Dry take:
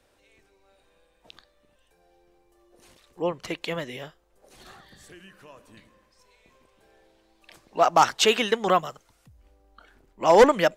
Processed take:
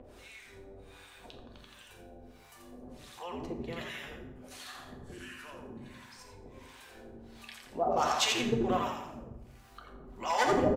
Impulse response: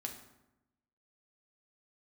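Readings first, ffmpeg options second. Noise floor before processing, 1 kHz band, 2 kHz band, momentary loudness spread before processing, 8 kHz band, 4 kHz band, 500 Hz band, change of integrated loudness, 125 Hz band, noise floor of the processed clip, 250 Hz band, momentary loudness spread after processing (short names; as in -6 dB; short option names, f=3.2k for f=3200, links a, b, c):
-66 dBFS, -9.0 dB, -7.5 dB, 21 LU, -5.5 dB, -6.5 dB, -11.0 dB, -10.5 dB, -1.5 dB, -55 dBFS, -4.0 dB, 24 LU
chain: -filter_complex "[0:a]asplit=8[a][b][c][d][e][f][g][h];[b]adelay=85,afreqshift=-100,volume=-3.5dB[i];[c]adelay=170,afreqshift=-200,volume=-9.3dB[j];[d]adelay=255,afreqshift=-300,volume=-15.2dB[k];[e]adelay=340,afreqshift=-400,volume=-21dB[l];[f]adelay=425,afreqshift=-500,volume=-26.9dB[m];[g]adelay=510,afreqshift=-600,volume=-32.7dB[n];[h]adelay=595,afreqshift=-700,volume=-38.6dB[o];[a][i][j][k][l][m][n][o]amix=inputs=8:normalize=0,acrossover=split=800[p][q];[p]aeval=exprs='val(0)*(1-1/2+1/2*cos(2*PI*1.4*n/s))':c=same[r];[q]aeval=exprs='val(0)*(1-1/2-1/2*cos(2*PI*1.4*n/s))':c=same[s];[r][s]amix=inputs=2:normalize=0,acompressor=mode=upward:threshold=-30dB:ratio=2.5[t];[1:a]atrim=start_sample=2205[u];[t][u]afir=irnorm=-1:irlink=0,volume=-4dB"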